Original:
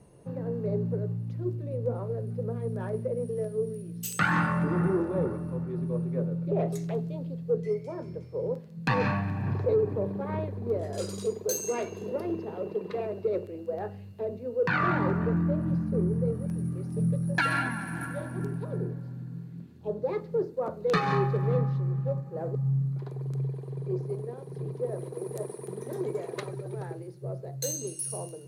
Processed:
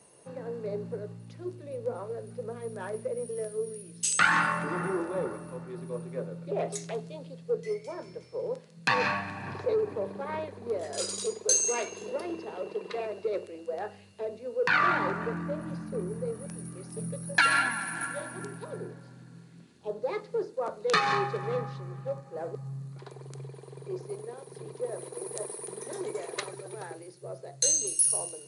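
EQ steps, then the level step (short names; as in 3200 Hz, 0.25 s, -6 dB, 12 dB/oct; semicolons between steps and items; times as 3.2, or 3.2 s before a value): HPF 860 Hz 6 dB/oct; brick-wall FIR low-pass 11000 Hz; high shelf 3800 Hz +7.5 dB; +4.0 dB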